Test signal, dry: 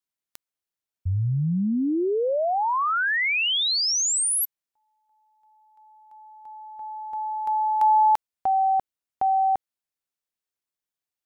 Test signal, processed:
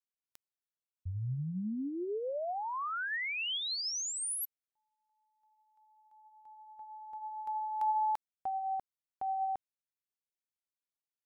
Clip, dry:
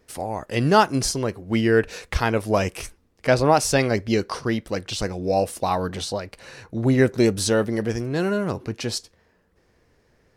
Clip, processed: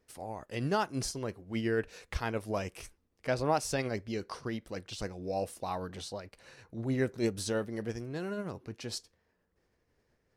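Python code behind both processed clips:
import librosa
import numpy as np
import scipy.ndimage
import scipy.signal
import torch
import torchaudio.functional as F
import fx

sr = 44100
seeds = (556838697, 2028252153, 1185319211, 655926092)

y = fx.am_noise(x, sr, seeds[0], hz=15.0, depth_pct=65)
y = y * 10.0 ** (-9.0 / 20.0)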